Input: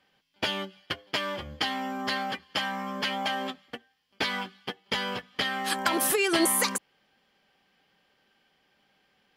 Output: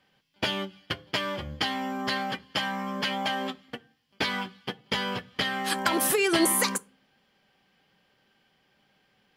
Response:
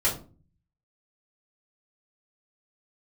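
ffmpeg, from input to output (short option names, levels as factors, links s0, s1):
-filter_complex "[0:a]equalizer=f=120:t=o:w=1.5:g=7,asplit=2[s0][s1];[1:a]atrim=start_sample=2205[s2];[s1][s2]afir=irnorm=-1:irlink=0,volume=0.0422[s3];[s0][s3]amix=inputs=2:normalize=0"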